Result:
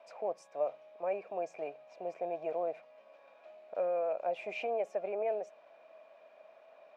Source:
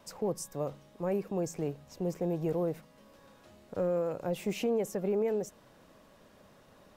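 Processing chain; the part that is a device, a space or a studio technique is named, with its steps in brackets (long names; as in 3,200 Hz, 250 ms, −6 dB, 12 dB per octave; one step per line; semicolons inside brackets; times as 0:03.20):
tin-can telephone (band-pass filter 610–2,900 Hz; hollow resonant body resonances 650/2,400 Hz, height 18 dB, ringing for 35 ms)
level −4 dB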